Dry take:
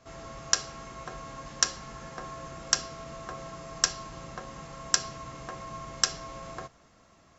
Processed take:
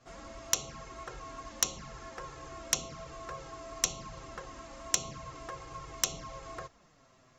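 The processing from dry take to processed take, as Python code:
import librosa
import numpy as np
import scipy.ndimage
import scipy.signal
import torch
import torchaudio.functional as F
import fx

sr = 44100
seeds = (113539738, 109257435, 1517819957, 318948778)

y = fx.env_flanger(x, sr, rest_ms=9.1, full_db=-29.0)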